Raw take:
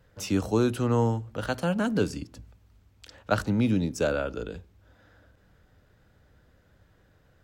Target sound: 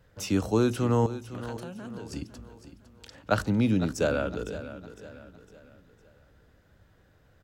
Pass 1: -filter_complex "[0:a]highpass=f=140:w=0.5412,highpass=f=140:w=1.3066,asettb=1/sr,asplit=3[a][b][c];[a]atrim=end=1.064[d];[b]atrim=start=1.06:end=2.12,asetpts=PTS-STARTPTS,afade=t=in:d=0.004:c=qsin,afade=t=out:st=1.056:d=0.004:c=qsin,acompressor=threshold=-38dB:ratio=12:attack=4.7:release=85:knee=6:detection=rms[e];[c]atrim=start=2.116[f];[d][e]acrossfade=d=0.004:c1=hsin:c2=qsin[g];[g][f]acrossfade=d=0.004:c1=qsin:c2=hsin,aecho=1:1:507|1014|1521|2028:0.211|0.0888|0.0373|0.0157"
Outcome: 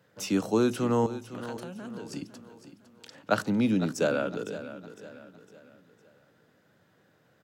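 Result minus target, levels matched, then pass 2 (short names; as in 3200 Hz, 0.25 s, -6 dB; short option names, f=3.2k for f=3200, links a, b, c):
125 Hz band -5.0 dB
-filter_complex "[0:a]asettb=1/sr,asplit=3[a][b][c];[a]atrim=end=1.064[d];[b]atrim=start=1.06:end=2.12,asetpts=PTS-STARTPTS,afade=t=in:d=0.004:c=qsin,afade=t=out:st=1.056:d=0.004:c=qsin,acompressor=threshold=-38dB:ratio=12:attack=4.7:release=85:knee=6:detection=rms[e];[c]atrim=start=2.116[f];[d][e]acrossfade=d=0.004:c1=hsin:c2=qsin[g];[g][f]acrossfade=d=0.004:c1=qsin:c2=hsin,aecho=1:1:507|1014|1521|2028:0.211|0.0888|0.0373|0.0157"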